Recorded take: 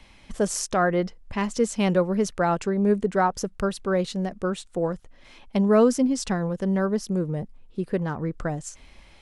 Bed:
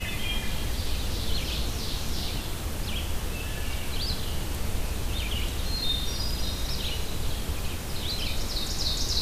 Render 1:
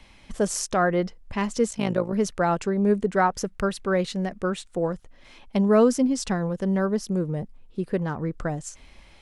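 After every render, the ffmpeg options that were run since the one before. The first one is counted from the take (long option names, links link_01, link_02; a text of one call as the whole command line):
ffmpeg -i in.wav -filter_complex "[0:a]asplit=3[link_01][link_02][link_03];[link_01]afade=type=out:start_time=1.69:duration=0.02[link_04];[link_02]tremolo=f=54:d=0.788,afade=type=in:start_time=1.69:duration=0.02,afade=type=out:start_time=2.12:duration=0.02[link_05];[link_03]afade=type=in:start_time=2.12:duration=0.02[link_06];[link_04][link_05][link_06]amix=inputs=3:normalize=0,asettb=1/sr,asplit=3[link_07][link_08][link_09];[link_07]atrim=end=3.164[link_10];[link_08]atrim=start=3.16:end=4.71,asetpts=PTS-STARTPTS,afade=type=in:duration=0.004:curve=qsin,afade=type=out:start_time=1.546:duration=0.004:curve=qsin,equalizer=frequency=2000:width=1.5:gain=4.5[link_11];[link_09]atrim=start=4.706[link_12];[link_10][link_11]acrossfade=duration=0.004:curve1=hsin:curve2=qsin[link_13];[link_13][link_12]acrossfade=duration=0.004:curve1=qsin:curve2=hsin" out.wav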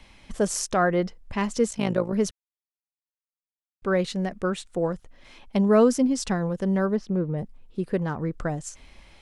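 ffmpeg -i in.wav -filter_complex "[0:a]asplit=3[link_01][link_02][link_03];[link_01]afade=type=out:start_time=6.95:duration=0.02[link_04];[link_02]lowpass=3000,afade=type=in:start_time=6.95:duration=0.02,afade=type=out:start_time=7.37:duration=0.02[link_05];[link_03]afade=type=in:start_time=7.37:duration=0.02[link_06];[link_04][link_05][link_06]amix=inputs=3:normalize=0,asplit=3[link_07][link_08][link_09];[link_07]atrim=end=2.31,asetpts=PTS-STARTPTS,afade=type=out:start_time=2.306:duration=0.004:curve=hsin[link_10];[link_08]atrim=start=2.31:end=3.82,asetpts=PTS-STARTPTS,volume=0[link_11];[link_09]atrim=start=3.82,asetpts=PTS-STARTPTS,afade=type=in:duration=0.004:curve=hsin[link_12];[link_10][link_11][link_12]concat=n=3:v=0:a=1" out.wav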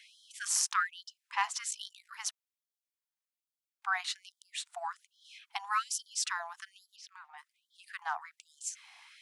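ffmpeg -i in.wav -af "afftfilt=real='re*gte(b*sr/1024,650*pow(3100/650,0.5+0.5*sin(2*PI*1.2*pts/sr)))':imag='im*gte(b*sr/1024,650*pow(3100/650,0.5+0.5*sin(2*PI*1.2*pts/sr)))':win_size=1024:overlap=0.75" out.wav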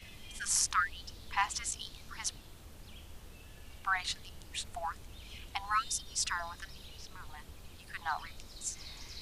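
ffmpeg -i in.wav -i bed.wav -filter_complex "[1:a]volume=-20.5dB[link_01];[0:a][link_01]amix=inputs=2:normalize=0" out.wav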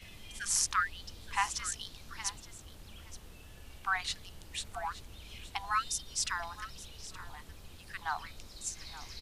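ffmpeg -i in.wav -af "aecho=1:1:871:0.168" out.wav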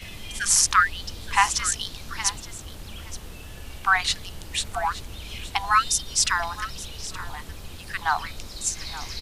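ffmpeg -i in.wav -af "volume=12dB,alimiter=limit=-3dB:level=0:latency=1" out.wav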